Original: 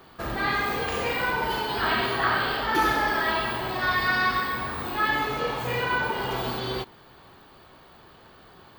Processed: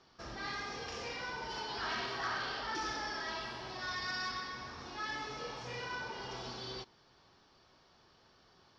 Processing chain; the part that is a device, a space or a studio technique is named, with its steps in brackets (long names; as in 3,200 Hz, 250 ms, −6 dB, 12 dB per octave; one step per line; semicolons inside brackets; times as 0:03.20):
overdriven synthesiser ladder filter (soft clipping −17.5 dBFS, distortion −19 dB; transistor ladder low-pass 5,700 Hz, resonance 85%)
0:01.56–0:02.75: parametric band 1,200 Hz +3 dB 2.5 octaves
level −2 dB